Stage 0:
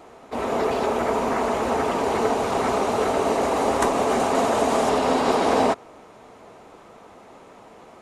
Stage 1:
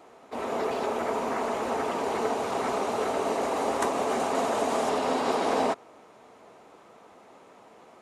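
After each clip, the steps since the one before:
high-pass filter 180 Hz 6 dB per octave
level −5.5 dB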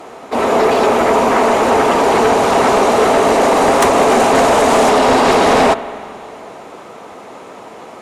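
sine wavefolder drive 8 dB, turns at −13 dBFS
spring reverb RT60 2.5 s, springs 43/52 ms, chirp 40 ms, DRR 13.5 dB
level +6.5 dB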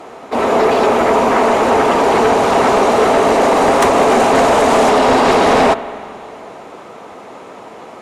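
high-shelf EQ 6,300 Hz −5 dB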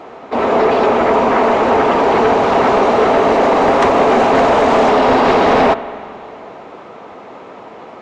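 Gaussian smoothing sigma 1.6 samples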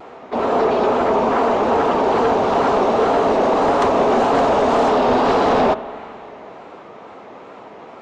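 dynamic equaliser 2,100 Hz, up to −6 dB, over −36 dBFS, Q 2.1
tape wow and flutter 75 cents
level −4 dB

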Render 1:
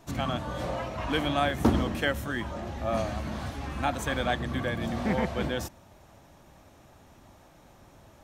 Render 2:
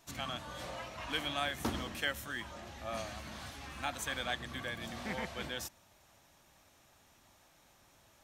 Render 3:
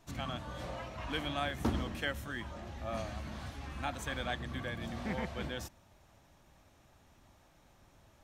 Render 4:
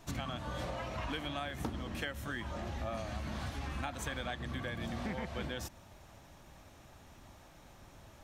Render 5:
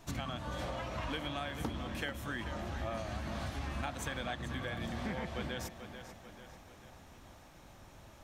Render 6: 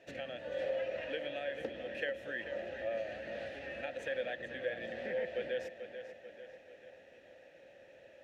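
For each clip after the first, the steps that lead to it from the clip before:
tilt shelving filter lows −7 dB, about 1,200 Hz; level −8 dB
spectral tilt −2 dB per octave
downward compressor 10 to 1, threshold −42 dBFS, peak gain reduction 16 dB; level +7 dB
tape delay 441 ms, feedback 56%, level −9 dB, low-pass 5,700 Hz
formant filter e; level +11.5 dB

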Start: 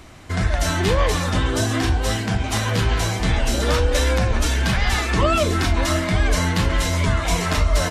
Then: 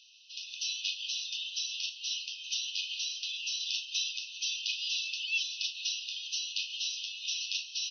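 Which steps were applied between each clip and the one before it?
brick-wall band-pass 2,500–6,200 Hz
level −3.5 dB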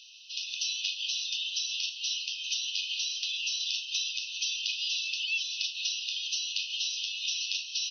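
downward compressor 3 to 1, threshold −37 dBFS, peak gain reduction 8 dB
level +7 dB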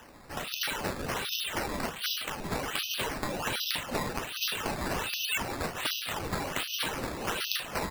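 gate on every frequency bin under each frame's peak −25 dB strong
sample-and-hold swept by an LFO 10×, swing 100% 1.3 Hz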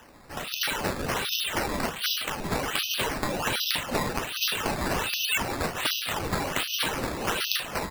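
automatic gain control gain up to 4.5 dB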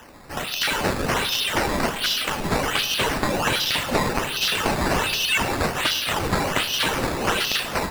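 on a send at −13 dB: convolution reverb RT60 1.2 s, pre-delay 60 ms
on the sum: slew-rate limiting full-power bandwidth 320 Hz
level +6 dB

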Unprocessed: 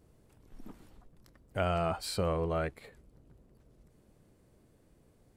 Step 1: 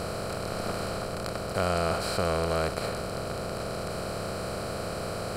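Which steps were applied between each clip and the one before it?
compressor on every frequency bin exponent 0.2
level −1 dB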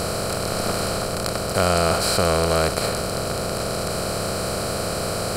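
bass and treble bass 0 dB, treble +7 dB
level +7.5 dB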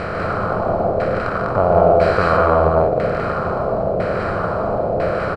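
auto-filter low-pass saw down 1 Hz 530–2,000 Hz
on a send: loudspeakers that aren't time-aligned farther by 39 metres −11 dB, 51 metres −4 dB, 68 metres −2 dB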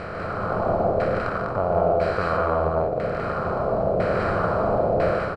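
automatic gain control
level −8.5 dB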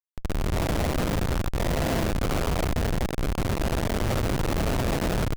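sub-harmonics by changed cycles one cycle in 2, muted
comparator with hysteresis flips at −22 dBFS
level +2 dB

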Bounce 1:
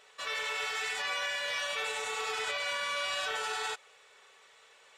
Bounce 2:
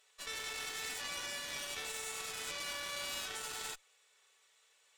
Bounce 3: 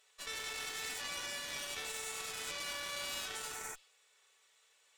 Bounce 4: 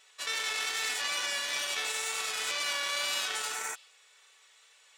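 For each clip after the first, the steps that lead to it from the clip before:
first-order pre-emphasis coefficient 0.8; harmonic generator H 6 −10 dB, 7 −28 dB, 8 −21 dB, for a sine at −28 dBFS
healed spectral selection 0:03.48–0:03.91, 2,500–5,400 Hz both
meter weighting curve A; tape wow and flutter 18 cents; level +8.5 dB

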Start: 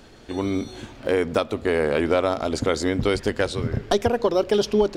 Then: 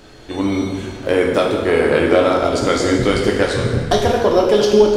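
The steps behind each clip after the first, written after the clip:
dense smooth reverb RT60 1.4 s, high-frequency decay 0.9×, DRR −1.5 dB
level +3.5 dB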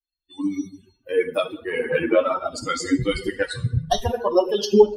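spectral dynamics exaggerated over time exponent 3
level +1.5 dB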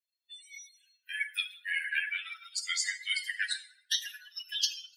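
Butterworth high-pass 1,600 Hz 96 dB per octave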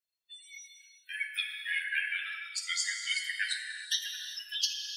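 reverb whose tail is shaped and stops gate 420 ms flat, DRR 4.5 dB
level −1 dB

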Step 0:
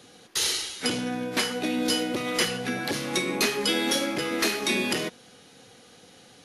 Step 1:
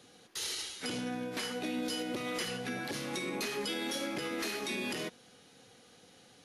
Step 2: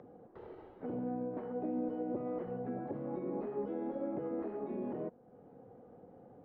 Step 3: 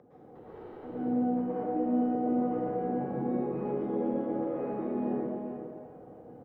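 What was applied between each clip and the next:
brickwall limiter −20 dBFS, peak gain reduction 6.5 dB; level −7 dB
transistor ladder low-pass 910 Hz, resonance 25%; in parallel at −2 dB: upward compression, threshold −46 dBFS
single-tap delay 395 ms −9.5 dB; dense smooth reverb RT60 2 s, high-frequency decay 0.95×, pre-delay 100 ms, DRR −9.5 dB; level −4 dB

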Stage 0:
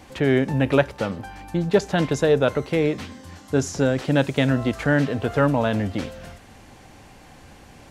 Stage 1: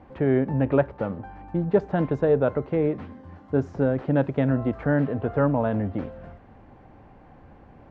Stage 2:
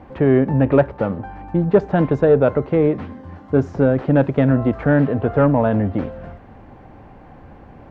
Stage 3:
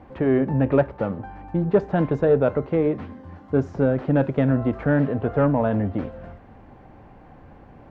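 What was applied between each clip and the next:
low-pass filter 1,200 Hz 12 dB per octave; level −2 dB
soft clipping −9 dBFS, distortion −25 dB; level +7.5 dB
flanger 0.33 Hz, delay 2.7 ms, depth 4.6 ms, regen −89%

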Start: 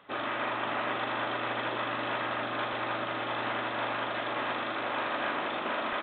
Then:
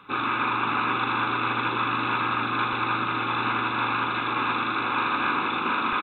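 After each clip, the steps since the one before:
comb filter 0.8 ms, depth 91%
level +4.5 dB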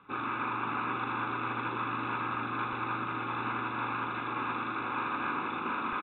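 high-frequency loss of the air 370 metres
level −6 dB

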